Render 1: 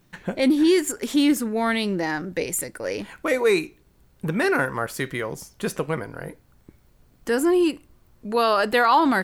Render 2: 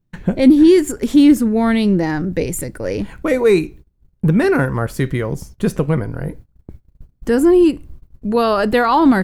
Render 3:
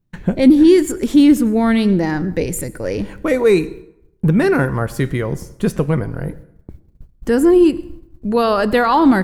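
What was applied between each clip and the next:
low-shelf EQ 120 Hz +10.5 dB; noise gate −44 dBFS, range −23 dB; low-shelf EQ 470 Hz +11 dB
dense smooth reverb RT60 0.78 s, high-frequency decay 0.65×, pre-delay 80 ms, DRR 18.5 dB

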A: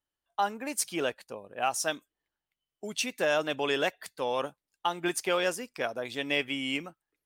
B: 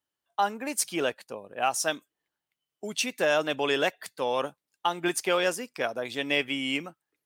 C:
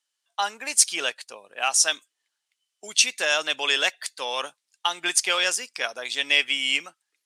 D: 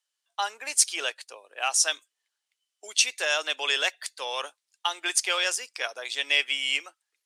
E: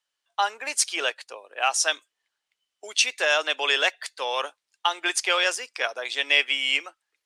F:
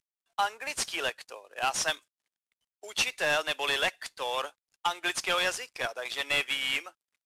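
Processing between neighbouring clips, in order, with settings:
high-pass filter 99 Hz; level +2.5 dB
meter weighting curve ITU-R 468
high-pass filter 340 Hz 24 dB per octave; level −3 dB
high-shelf EQ 4,600 Hz −11.5 dB; level +6 dB
variable-slope delta modulation 64 kbit/s; level −4 dB

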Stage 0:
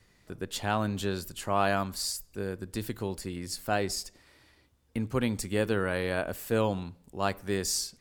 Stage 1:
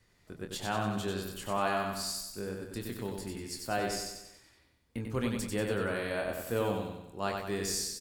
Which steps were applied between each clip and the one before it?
double-tracking delay 25 ms −7 dB
on a send: repeating echo 94 ms, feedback 50%, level −4 dB
on the sum: level −5.5 dB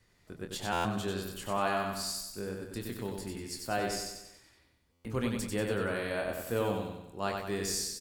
buffer that repeats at 0:00.72/0:04.92, samples 512, times 10

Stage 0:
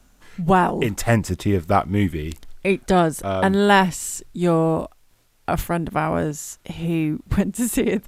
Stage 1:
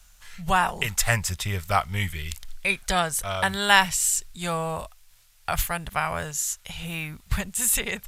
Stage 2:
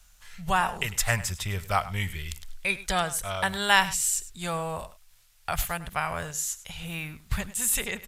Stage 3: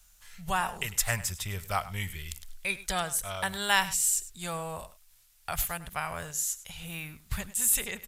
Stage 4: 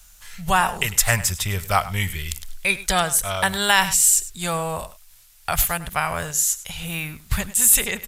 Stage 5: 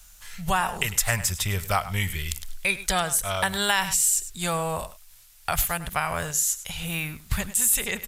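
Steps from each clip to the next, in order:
guitar amp tone stack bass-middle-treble 10-0-10; level +6.5 dB
single-tap delay 101 ms −16.5 dB; level −3 dB
high-shelf EQ 6,900 Hz +8.5 dB; level −5 dB
boost into a limiter +11.5 dB; level −1 dB
downward compressor 2 to 1, threshold −21 dBFS, peak gain reduction 6.5 dB; level −1 dB

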